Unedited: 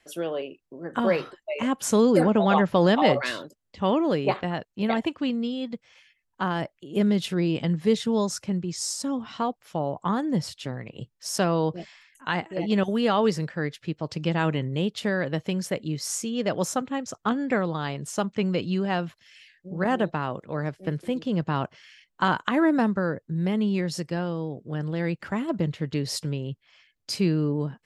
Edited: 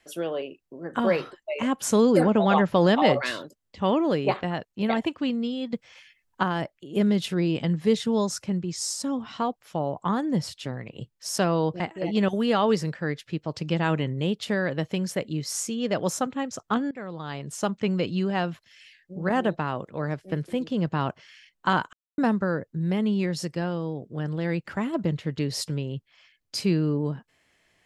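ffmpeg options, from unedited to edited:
ffmpeg -i in.wav -filter_complex "[0:a]asplit=7[link_01][link_02][link_03][link_04][link_05][link_06][link_07];[link_01]atrim=end=5.732[link_08];[link_02]atrim=start=5.728:end=6.432,asetpts=PTS-STARTPTS,volume=5dB[link_09];[link_03]atrim=start=6.428:end=11.802[link_10];[link_04]atrim=start=12.348:end=17.46,asetpts=PTS-STARTPTS,afade=type=out:start_time=5.108:duration=0.004:curve=hsin:silence=0.0944061[link_11];[link_05]atrim=start=17.46:end=22.48,asetpts=PTS-STARTPTS,afade=type=in:duration=0.71:silence=0.0944061,afade=type=out:start_time=5.016:duration=0.004:curve=hsin[link_12];[link_06]atrim=start=22.48:end=22.73,asetpts=PTS-STARTPTS,volume=0[link_13];[link_07]atrim=start=22.73,asetpts=PTS-STARTPTS,afade=type=in:duration=0.004:curve=hsin[link_14];[link_08][link_09]acrossfade=duration=0.004:curve1=hsin:curve2=hsin[link_15];[link_15][link_10]acrossfade=duration=0.004:curve1=hsin:curve2=hsin[link_16];[link_11][link_12][link_13][link_14]concat=n=4:v=0:a=1[link_17];[link_16][link_17]acrossfade=duration=0.004:curve1=hsin:curve2=hsin" out.wav

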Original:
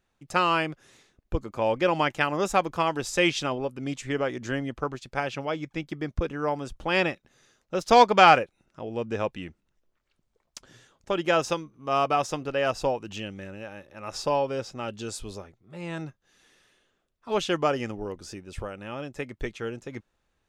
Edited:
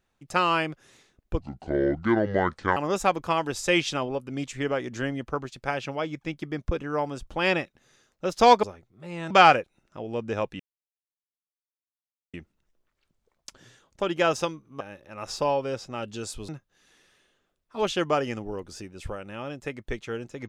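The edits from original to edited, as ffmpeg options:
ffmpeg -i in.wav -filter_complex "[0:a]asplit=8[link_01][link_02][link_03][link_04][link_05][link_06][link_07][link_08];[link_01]atrim=end=1.404[link_09];[link_02]atrim=start=1.4:end=2.26,asetpts=PTS-STARTPTS,asetrate=27783,aresample=44100[link_10];[link_03]atrim=start=2.256:end=8.132[link_11];[link_04]atrim=start=15.338:end=16.012[link_12];[link_05]atrim=start=8.128:end=9.42,asetpts=PTS-STARTPTS,afade=type=out:start_time=1.288:duration=0.004:curve=hsin,apad=pad_dur=1.74[link_13];[link_06]atrim=start=9.42:end=11.892,asetpts=PTS-STARTPTS,afade=type=in:duration=0.004:curve=hsin[link_14];[link_07]atrim=start=13.658:end=15.342[link_15];[link_08]atrim=start=16.008[link_16];[link_09][link_10]acrossfade=duration=0.004:curve1=hsin:curve2=hsin[link_17];[link_17][link_11]acrossfade=duration=0.004:curve1=hsin:curve2=hsin[link_18];[link_18][link_12]acrossfade=duration=0.004:curve1=hsin:curve2=hsin[link_19];[link_13][link_14]concat=n=2:v=0:a=1[link_20];[link_19][link_20]acrossfade=duration=0.004:curve1=hsin:curve2=hsin[link_21];[link_21][link_15]acrossfade=duration=0.004:curve1=hsin:curve2=hsin[link_22];[link_22][link_16]acrossfade=duration=0.004:curve1=hsin:curve2=hsin" out.wav

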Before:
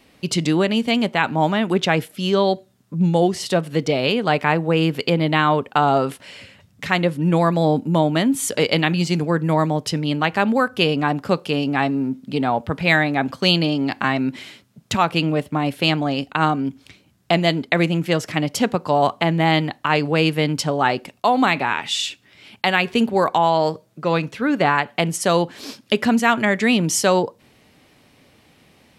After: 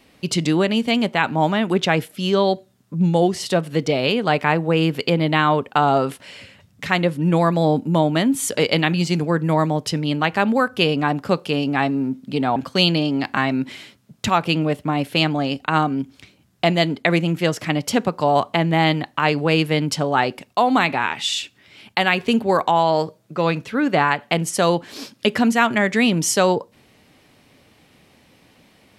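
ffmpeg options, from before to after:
ffmpeg -i in.wav -filter_complex "[0:a]asplit=2[link_01][link_02];[link_01]atrim=end=12.562[link_03];[link_02]atrim=start=13.228[link_04];[link_03][link_04]acrossfade=duration=0.004:curve1=hsin:curve2=hsin" out.wav

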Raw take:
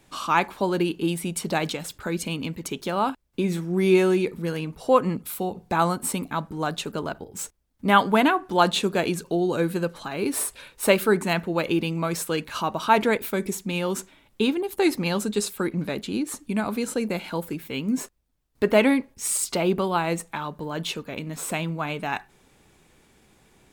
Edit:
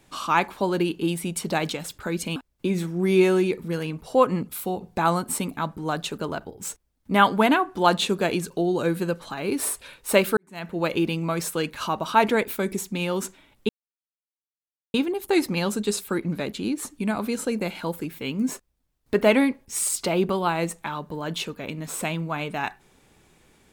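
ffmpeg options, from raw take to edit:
ffmpeg -i in.wav -filter_complex "[0:a]asplit=4[link_01][link_02][link_03][link_04];[link_01]atrim=end=2.362[link_05];[link_02]atrim=start=3.098:end=11.11,asetpts=PTS-STARTPTS,afade=type=out:start_time=8.008:duration=0.004:curve=hsin[link_06];[link_03]atrim=start=11.11:end=14.43,asetpts=PTS-STARTPTS,afade=type=in:duration=0.43:curve=qua,afade=type=out:start_time=3.316:duration=0.004:curve=hsin,apad=pad_dur=1.25[link_07];[link_04]atrim=start=14.43,asetpts=PTS-STARTPTS,afade=type=in:duration=0.004:curve=hsin[link_08];[link_06][link_07][link_08]concat=n=3:v=0:a=1[link_09];[link_05][link_09]acrossfade=duration=0.004:curve1=hsin:curve2=hsin" out.wav

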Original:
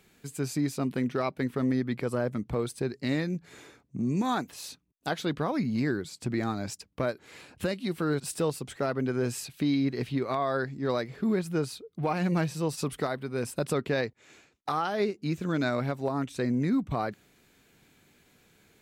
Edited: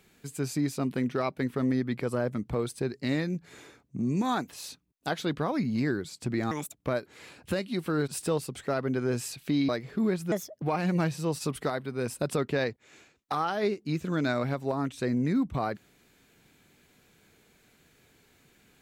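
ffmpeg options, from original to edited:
ffmpeg -i in.wav -filter_complex "[0:a]asplit=6[link_01][link_02][link_03][link_04][link_05][link_06];[link_01]atrim=end=6.514[link_07];[link_02]atrim=start=6.51:end=6.89,asetpts=PTS-STARTPTS,asetrate=65268,aresample=44100[link_08];[link_03]atrim=start=6.886:end=9.812[link_09];[link_04]atrim=start=10.938:end=11.574[link_10];[link_05]atrim=start=11.57:end=11.99,asetpts=PTS-STARTPTS,asetrate=60858,aresample=44100[link_11];[link_06]atrim=start=11.986[link_12];[link_07][link_08]acrossfade=duration=0.004:curve1=hsin:curve2=hsin[link_13];[link_13][link_09]acrossfade=duration=0.004:curve1=hsin:curve2=hsin[link_14];[link_14][link_10]acrossfade=duration=0.004:curve1=hsin:curve2=hsin[link_15];[link_15][link_11]acrossfade=duration=0.004:curve1=hsin:curve2=hsin[link_16];[link_16][link_12]acrossfade=duration=0.004:curve1=hsin:curve2=hsin" out.wav

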